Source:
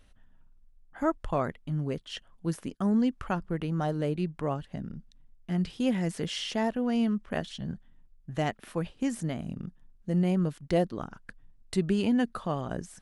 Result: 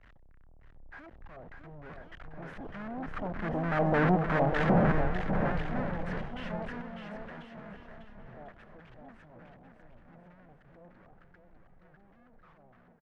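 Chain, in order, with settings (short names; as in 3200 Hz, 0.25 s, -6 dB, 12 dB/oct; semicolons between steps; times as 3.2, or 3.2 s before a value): infinite clipping; Doppler pass-by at 4.42, 8 m/s, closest 3.2 m; in parallel at -6.5 dB: wrapped overs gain 32.5 dB; on the sum: LFO low-pass square 3.3 Hz 720–1700 Hz; on a send: bouncing-ball echo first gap 0.6 s, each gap 0.75×, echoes 5; on the sum: three-band expander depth 70%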